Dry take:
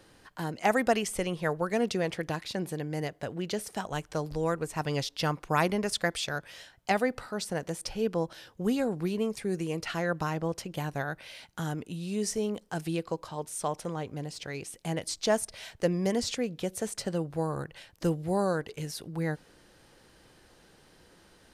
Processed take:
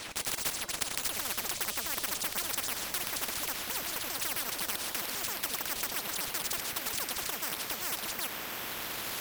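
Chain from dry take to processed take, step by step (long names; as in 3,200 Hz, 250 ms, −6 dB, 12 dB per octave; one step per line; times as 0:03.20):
pitch shifter swept by a sawtooth −10.5 semitones, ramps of 309 ms
camcorder AGC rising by 6.5 dB per second
bass and treble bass +8 dB, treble +6 dB
hum removal 261.6 Hz, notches 33
in parallel at −2.5 dB: brickwall limiter −18.5 dBFS, peak gain reduction 9 dB
on the sum: band-pass filter sweep 7,000 Hz → 640 Hz, 0:02.19–0:02.81
on a send: feedback delay with all-pass diffusion 1,861 ms, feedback 68%, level −14 dB
on the sum: sample-rate reduction 5,900 Hz, jitter 0%
wrong playback speed 33 rpm record played at 78 rpm
every bin compressed towards the loudest bin 10 to 1
level +4.5 dB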